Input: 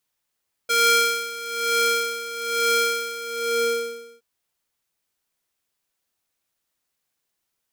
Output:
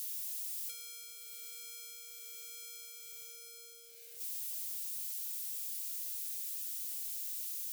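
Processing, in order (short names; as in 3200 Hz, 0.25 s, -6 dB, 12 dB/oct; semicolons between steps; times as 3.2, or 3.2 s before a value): zero-crossing step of -28.5 dBFS; compressor 6:1, threshold -30 dBFS, peak gain reduction 16.5 dB; differentiator; fixed phaser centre 460 Hz, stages 4; gain -8.5 dB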